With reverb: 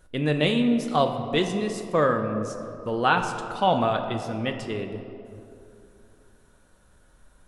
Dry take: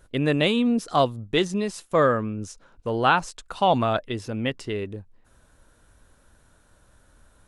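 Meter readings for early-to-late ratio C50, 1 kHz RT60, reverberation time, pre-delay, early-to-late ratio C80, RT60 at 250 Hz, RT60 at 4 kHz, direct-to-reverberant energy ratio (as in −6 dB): 7.5 dB, 2.6 s, 2.9 s, 4 ms, 8.5 dB, 3.1 s, 1.3 s, 4.5 dB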